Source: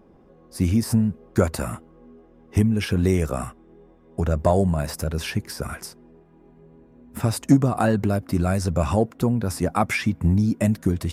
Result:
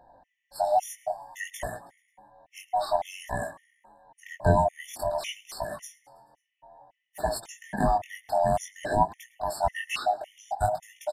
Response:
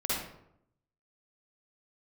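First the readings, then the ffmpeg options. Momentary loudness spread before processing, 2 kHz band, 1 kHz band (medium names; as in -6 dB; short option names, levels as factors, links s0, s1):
12 LU, -4.5 dB, +3.5 dB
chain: -filter_complex "[0:a]afftfilt=real='real(if(lt(b,1008),b+24*(1-2*mod(floor(b/24),2)),b),0)':imag='imag(if(lt(b,1008),b+24*(1-2*mod(floor(b/24),2)),b),0)':win_size=2048:overlap=0.75,flanger=delay=18:depth=5.2:speed=0.54,asplit=2[s0][s1];[s1]asplit=5[s2][s3][s4][s5][s6];[s2]adelay=108,afreqshift=60,volume=0.075[s7];[s3]adelay=216,afreqshift=120,volume=0.0457[s8];[s4]adelay=324,afreqshift=180,volume=0.0279[s9];[s5]adelay=432,afreqshift=240,volume=0.017[s10];[s6]adelay=540,afreqshift=300,volume=0.0104[s11];[s7][s8][s9][s10][s11]amix=inputs=5:normalize=0[s12];[s0][s12]amix=inputs=2:normalize=0,afftfilt=real='re*gt(sin(2*PI*1.8*pts/sr)*(1-2*mod(floor(b*sr/1024/1800),2)),0)':imag='im*gt(sin(2*PI*1.8*pts/sr)*(1-2*mod(floor(b*sr/1024/1800),2)),0)':win_size=1024:overlap=0.75"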